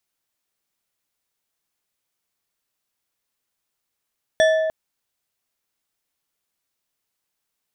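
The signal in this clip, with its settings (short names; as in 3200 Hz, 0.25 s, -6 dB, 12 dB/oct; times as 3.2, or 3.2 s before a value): glass hit bar, length 0.30 s, lowest mode 637 Hz, decay 1.99 s, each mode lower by 6 dB, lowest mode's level -12 dB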